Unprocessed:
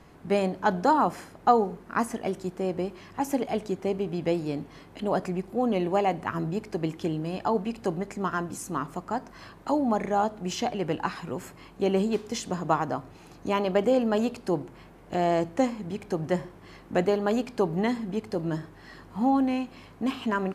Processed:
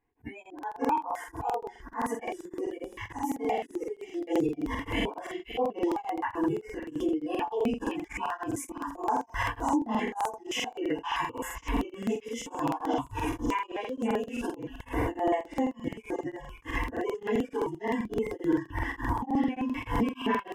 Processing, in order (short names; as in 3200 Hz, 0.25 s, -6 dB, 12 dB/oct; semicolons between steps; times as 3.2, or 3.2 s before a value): phase scrambler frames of 0.1 s; recorder AGC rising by 75 dB/s; high shelf 3600 Hz -10.5 dB; fixed phaser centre 880 Hz, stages 8; limiter -19 dBFS, peak gain reduction 8 dB; spectral noise reduction 25 dB; auto swell 0.11 s; delay with a stepping band-pass 0.534 s, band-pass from 3300 Hz, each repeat 0.7 oct, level -3.5 dB; crackling interface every 0.13 s, samples 2048, repeat, from 0.41; beating tremolo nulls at 3.4 Hz; gain +2.5 dB